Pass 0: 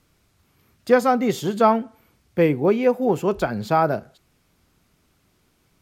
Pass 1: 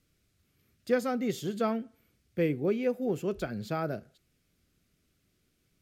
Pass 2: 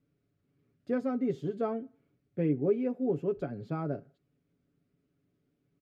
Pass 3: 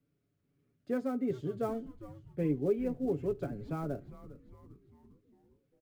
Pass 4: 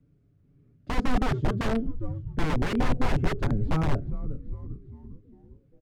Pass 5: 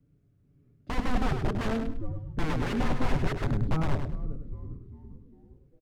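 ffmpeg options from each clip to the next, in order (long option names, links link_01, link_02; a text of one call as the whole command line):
ffmpeg -i in.wav -af "equalizer=frequency=920:width=1.9:gain=-14,volume=-8.5dB" out.wav
ffmpeg -i in.wav -af "bandpass=frequency=290:width_type=q:width=0.57:csg=0,aecho=1:1:7.1:0.62" out.wav
ffmpeg -i in.wav -filter_complex "[0:a]acrossover=split=300|660[link_01][link_02][link_03];[link_03]acrusher=bits=4:mode=log:mix=0:aa=0.000001[link_04];[link_01][link_02][link_04]amix=inputs=3:normalize=0,asplit=6[link_05][link_06][link_07][link_08][link_09][link_10];[link_06]adelay=402,afreqshift=-130,volume=-15dB[link_11];[link_07]adelay=804,afreqshift=-260,volume=-20.4dB[link_12];[link_08]adelay=1206,afreqshift=-390,volume=-25.7dB[link_13];[link_09]adelay=1608,afreqshift=-520,volume=-31.1dB[link_14];[link_10]adelay=2010,afreqshift=-650,volume=-36.4dB[link_15];[link_05][link_11][link_12][link_13][link_14][link_15]amix=inputs=6:normalize=0,volume=-2.5dB" out.wav
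ffmpeg -i in.wav -af "aeval=exprs='(mod(33.5*val(0)+1,2)-1)/33.5':channel_layout=same,aemphasis=mode=reproduction:type=riaa,volume=5.5dB" out.wav
ffmpeg -i in.wav -af "aecho=1:1:102|204|306:0.447|0.112|0.0279,volume=-3dB" out.wav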